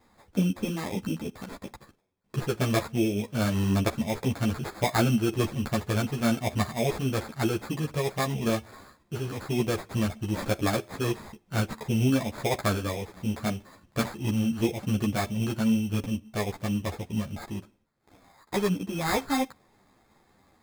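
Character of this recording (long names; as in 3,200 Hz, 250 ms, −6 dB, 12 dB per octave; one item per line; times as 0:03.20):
aliases and images of a low sample rate 2,900 Hz, jitter 0%
a shimmering, thickened sound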